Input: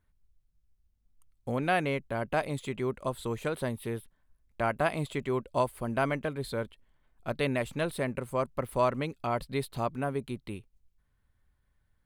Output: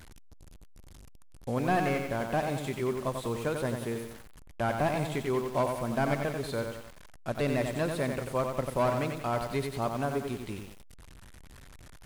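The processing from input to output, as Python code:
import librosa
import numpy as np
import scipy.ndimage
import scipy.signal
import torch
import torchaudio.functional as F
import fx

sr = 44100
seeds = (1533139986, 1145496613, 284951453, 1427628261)

y = fx.delta_mod(x, sr, bps=64000, step_db=-44.0)
y = fx.echo_crushed(y, sr, ms=91, feedback_pct=55, bits=8, wet_db=-5.0)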